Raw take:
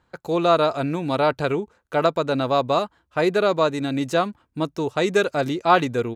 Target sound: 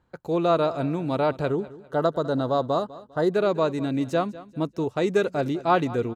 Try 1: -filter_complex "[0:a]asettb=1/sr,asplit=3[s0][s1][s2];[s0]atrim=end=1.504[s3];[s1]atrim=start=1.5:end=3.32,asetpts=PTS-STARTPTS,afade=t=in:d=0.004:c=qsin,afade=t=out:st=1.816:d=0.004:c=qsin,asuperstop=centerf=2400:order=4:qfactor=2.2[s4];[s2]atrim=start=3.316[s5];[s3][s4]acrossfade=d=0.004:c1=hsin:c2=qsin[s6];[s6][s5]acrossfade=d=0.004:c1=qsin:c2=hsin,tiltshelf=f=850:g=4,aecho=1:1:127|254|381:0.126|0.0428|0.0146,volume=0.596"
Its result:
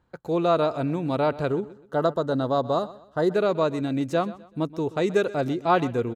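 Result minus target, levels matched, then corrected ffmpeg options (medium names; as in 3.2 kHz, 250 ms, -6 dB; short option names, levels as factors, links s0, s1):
echo 73 ms early
-filter_complex "[0:a]asettb=1/sr,asplit=3[s0][s1][s2];[s0]atrim=end=1.504[s3];[s1]atrim=start=1.5:end=3.32,asetpts=PTS-STARTPTS,afade=t=in:d=0.004:c=qsin,afade=t=out:st=1.816:d=0.004:c=qsin,asuperstop=centerf=2400:order=4:qfactor=2.2[s4];[s2]atrim=start=3.316[s5];[s3][s4]acrossfade=d=0.004:c1=hsin:c2=qsin[s6];[s6][s5]acrossfade=d=0.004:c1=qsin:c2=hsin,tiltshelf=f=850:g=4,aecho=1:1:200|400|600:0.126|0.0428|0.0146,volume=0.596"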